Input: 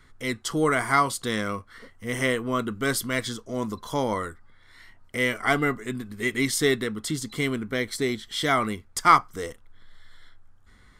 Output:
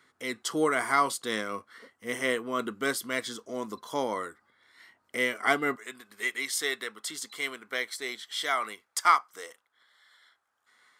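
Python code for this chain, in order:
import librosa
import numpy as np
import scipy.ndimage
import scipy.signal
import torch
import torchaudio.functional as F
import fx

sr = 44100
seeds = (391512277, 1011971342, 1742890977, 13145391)

y = fx.highpass(x, sr, hz=fx.steps((0.0, 280.0), (5.76, 700.0)), slope=12)
y = fx.am_noise(y, sr, seeds[0], hz=5.7, depth_pct=55)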